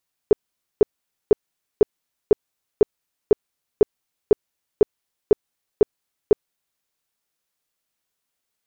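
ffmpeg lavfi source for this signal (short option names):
-f lavfi -i "aevalsrc='0.447*sin(2*PI*420*mod(t,0.5))*lt(mod(t,0.5),8/420)':d=6.5:s=44100"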